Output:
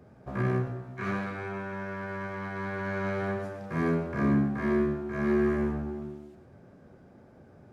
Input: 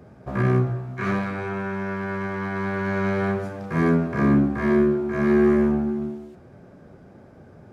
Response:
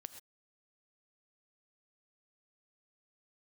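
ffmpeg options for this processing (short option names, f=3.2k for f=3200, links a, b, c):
-filter_complex "[1:a]atrim=start_sample=2205[a];[0:a][a]afir=irnorm=-1:irlink=0,volume=-1dB"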